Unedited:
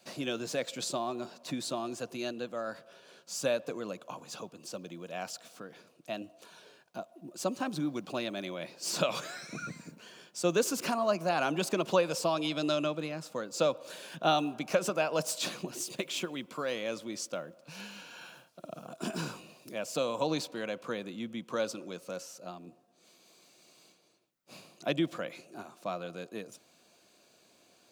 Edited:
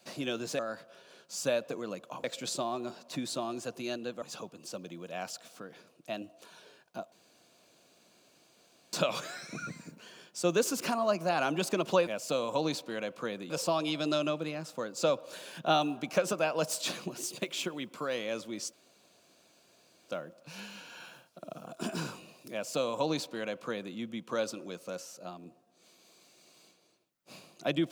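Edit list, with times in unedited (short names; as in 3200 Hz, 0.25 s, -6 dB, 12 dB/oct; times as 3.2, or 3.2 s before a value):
2.57–4.22 move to 0.59
7.12–8.93 room tone
17.3 insert room tone 1.36 s
19.73–21.16 copy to 12.07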